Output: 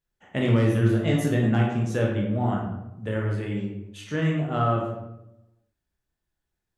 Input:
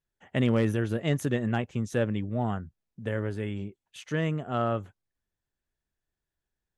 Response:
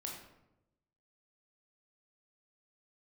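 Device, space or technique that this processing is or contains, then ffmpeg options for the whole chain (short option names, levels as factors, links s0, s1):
bathroom: -filter_complex "[0:a]asettb=1/sr,asplit=3[s0][s1][s2];[s0]atrim=end=0.744[s3];[s1]atrim=start=0.74:end=1.69,asetpts=PTS-STARTPTS,afade=t=in:d=0.004:c=qsin,afade=t=out:st=0.946:d=0.004:c=qsin,asplit=2[s4][s5];[s5]adelay=18,volume=0.447[s6];[s4][s6]amix=inputs=2:normalize=0,atrim=end_sample=41895[s7];[s2]atrim=start=1.686[s8];[s3][s7]acrossfade=d=0.004:c1=hsin:c2=qsin[s9];[s9][s8]acrossfade=d=0.004:c1=qsin:c2=hsin[s10];[1:a]atrim=start_sample=2205[s11];[s10][s11]afir=irnorm=-1:irlink=0,volume=1.78"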